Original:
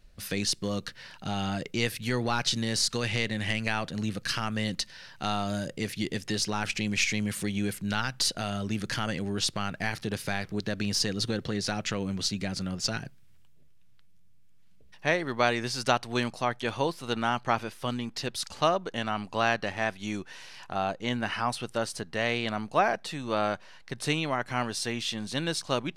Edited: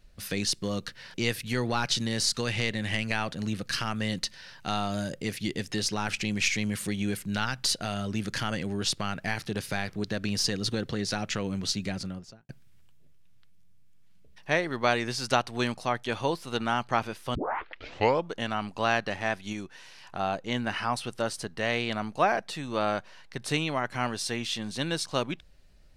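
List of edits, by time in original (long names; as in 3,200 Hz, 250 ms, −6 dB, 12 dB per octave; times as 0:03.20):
0:01.14–0:01.70: remove
0:12.43–0:13.05: fade out and dull
0:17.91: tape start 0.97 s
0:20.09–0:20.66: clip gain −3.5 dB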